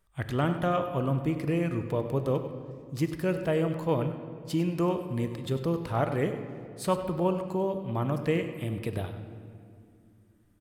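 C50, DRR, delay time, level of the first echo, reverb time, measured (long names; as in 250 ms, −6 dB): 7.5 dB, 7.0 dB, 98 ms, −12.0 dB, 2.3 s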